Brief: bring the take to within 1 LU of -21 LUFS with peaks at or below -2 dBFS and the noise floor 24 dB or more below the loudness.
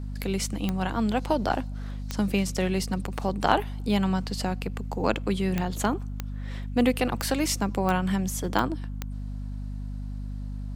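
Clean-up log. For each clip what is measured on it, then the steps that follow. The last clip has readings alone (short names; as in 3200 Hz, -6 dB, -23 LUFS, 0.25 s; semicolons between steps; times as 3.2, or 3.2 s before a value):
clicks 8; hum 50 Hz; harmonics up to 250 Hz; hum level -31 dBFS; loudness -28.5 LUFS; peak -4.5 dBFS; loudness target -21.0 LUFS
-> de-click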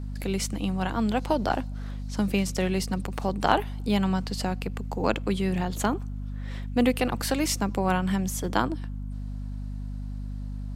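clicks 0; hum 50 Hz; harmonics up to 250 Hz; hum level -31 dBFS
-> notches 50/100/150/200/250 Hz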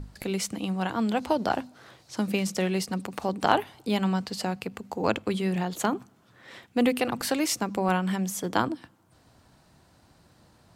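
hum none; loudness -28.0 LUFS; peak -4.5 dBFS; loudness target -21.0 LUFS
-> gain +7 dB; limiter -2 dBFS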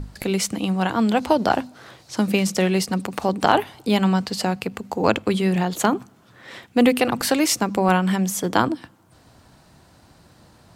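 loudness -21.5 LUFS; peak -2.0 dBFS; noise floor -54 dBFS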